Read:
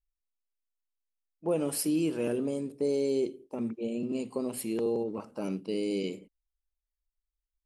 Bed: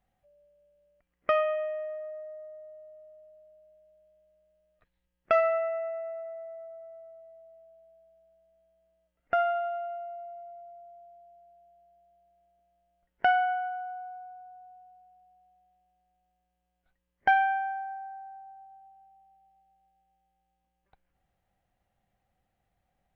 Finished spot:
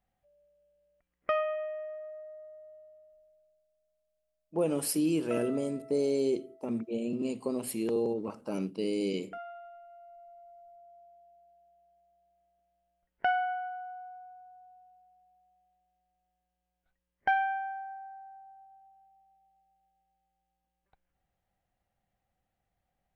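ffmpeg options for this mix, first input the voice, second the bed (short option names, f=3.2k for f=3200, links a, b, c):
-filter_complex "[0:a]adelay=3100,volume=0dB[a];[1:a]volume=8.5dB,afade=t=out:st=2.74:d=0.92:silence=0.223872,afade=t=in:st=9.87:d=1.12:silence=0.237137[b];[a][b]amix=inputs=2:normalize=0"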